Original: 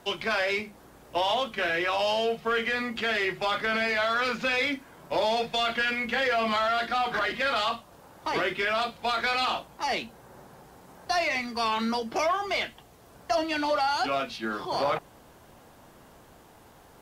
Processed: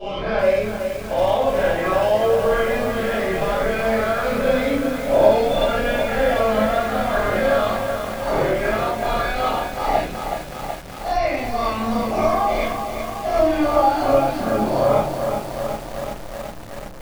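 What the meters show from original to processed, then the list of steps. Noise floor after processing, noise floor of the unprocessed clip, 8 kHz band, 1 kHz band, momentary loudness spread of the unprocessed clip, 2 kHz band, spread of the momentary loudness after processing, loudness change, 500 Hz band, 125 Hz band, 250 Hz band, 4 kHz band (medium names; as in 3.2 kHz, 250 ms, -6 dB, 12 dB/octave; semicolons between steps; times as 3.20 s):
-32 dBFS, -54 dBFS, +7.0 dB, +6.5 dB, 6 LU, +1.5 dB, 10 LU, +7.0 dB, +12.0 dB, +17.0 dB, +10.5 dB, -1.5 dB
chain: every event in the spectrogram widened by 120 ms; tilt shelf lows +9.5 dB, about 1.2 kHz; simulated room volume 160 m³, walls furnished, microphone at 5.9 m; chorus voices 4, 0.23 Hz, delay 28 ms, depth 1.3 ms; bit-crushed delay 374 ms, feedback 80%, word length 4-bit, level -7 dB; trim -10.5 dB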